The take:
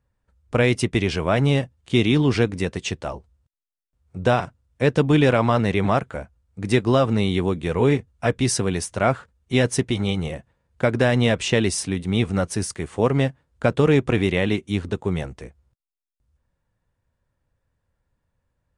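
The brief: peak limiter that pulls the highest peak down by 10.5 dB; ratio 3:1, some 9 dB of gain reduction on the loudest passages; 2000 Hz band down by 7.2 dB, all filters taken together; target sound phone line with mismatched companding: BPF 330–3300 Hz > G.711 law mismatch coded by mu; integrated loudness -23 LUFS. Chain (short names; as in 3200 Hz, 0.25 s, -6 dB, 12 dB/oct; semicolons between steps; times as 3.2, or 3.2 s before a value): bell 2000 Hz -8.5 dB; compressor 3:1, threshold -26 dBFS; limiter -24 dBFS; BPF 330–3300 Hz; G.711 law mismatch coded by mu; gain +14.5 dB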